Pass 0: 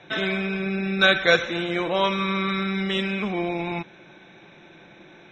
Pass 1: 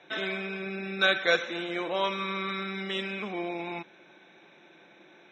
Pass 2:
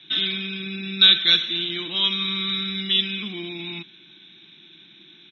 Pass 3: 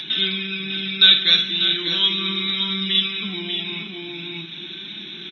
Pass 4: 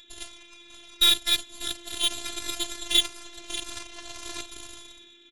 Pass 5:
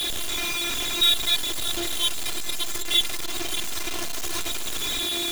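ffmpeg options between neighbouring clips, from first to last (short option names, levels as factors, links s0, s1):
-af "highpass=250,volume=0.501"
-af "firequalizer=gain_entry='entry(110,0);entry(340,-8);entry(520,-28);entry(1100,-15);entry(2300,-7);entry(3400,10);entry(7900,-27)':delay=0.05:min_phase=1,volume=2.82"
-filter_complex "[0:a]asplit=2[s0][s1];[s1]aecho=0:1:54|592|629:0.355|0.398|0.211[s2];[s0][s2]amix=inputs=2:normalize=0,acompressor=mode=upward:threshold=0.0708:ratio=2.5,flanger=delay=4.6:depth=3.1:regen=48:speed=0.4:shape=triangular,volume=1.78"
-af "dynaudnorm=f=130:g=9:m=5.01,aeval=exprs='0.944*(cos(1*acos(clip(val(0)/0.944,-1,1)))-cos(1*PI/2))+0.0668*(cos(6*acos(clip(val(0)/0.944,-1,1)))-cos(6*PI/2))+0.168*(cos(7*acos(clip(val(0)/0.944,-1,1)))-cos(7*PI/2))':c=same,afftfilt=real='hypot(re,im)*cos(PI*b)':imag='0':win_size=512:overlap=0.75,volume=0.562"
-af "aeval=exprs='val(0)+0.5*0.119*sgn(val(0))':c=same,volume=0.75"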